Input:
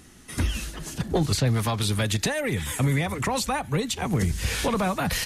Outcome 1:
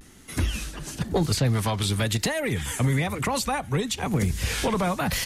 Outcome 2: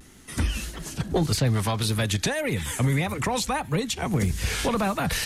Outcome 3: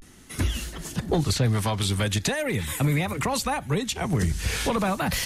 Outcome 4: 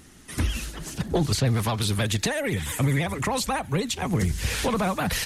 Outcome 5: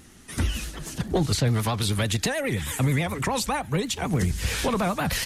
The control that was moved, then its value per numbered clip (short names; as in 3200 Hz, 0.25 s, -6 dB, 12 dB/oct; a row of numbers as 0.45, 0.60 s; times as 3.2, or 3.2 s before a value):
vibrato, rate: 1, 1.7, 0.42, 16, 9.4 Hz